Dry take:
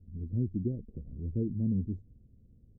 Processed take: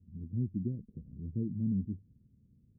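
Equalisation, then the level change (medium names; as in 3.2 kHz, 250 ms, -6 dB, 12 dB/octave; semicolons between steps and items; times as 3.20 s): band-pass filter 170 Hz, Q 1.2; 0.0 dB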